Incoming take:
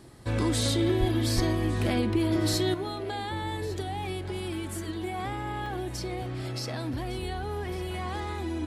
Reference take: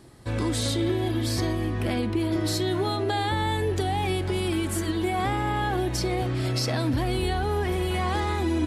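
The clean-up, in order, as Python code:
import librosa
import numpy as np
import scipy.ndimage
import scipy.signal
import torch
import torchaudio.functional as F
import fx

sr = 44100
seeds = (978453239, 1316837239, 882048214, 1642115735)

y = fx.fix_deplosive(x, sr, at_s=(0.99, 1.35))
y = fx.fix_interpolate(y, sr, at_s=(5.66,), length_ms=2.1)
y = fx.fix_echo_inverse(y, sr, delay_ms=1155, level_db=-18.0)
y = fx.fix_level(y, sr, at_s=2.74, step_db=7.5)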